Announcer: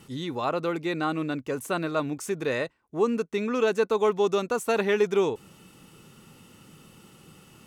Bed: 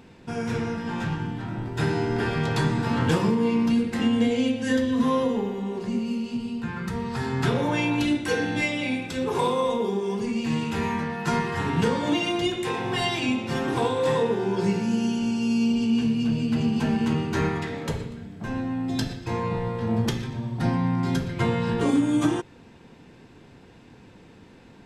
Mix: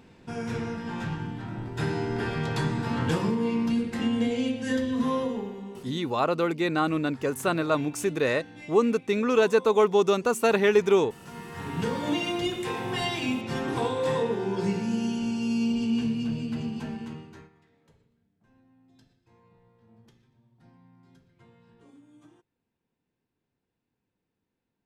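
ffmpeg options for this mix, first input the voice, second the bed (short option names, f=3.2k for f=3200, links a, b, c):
-filter_complex "[0:a]adelay=5750,volume=2.5dB[a];[1:a]volume=12.5dB,afade=t=out:st=5.13:d=0.94:silence=0.158489,afade=t=in:st=11.33:d=0.76:silence=0.149624,afade=t=out:st=15.98:d=1.51:silence=0.0316228[b];[a][b]amix=inputs=2:normalize=0"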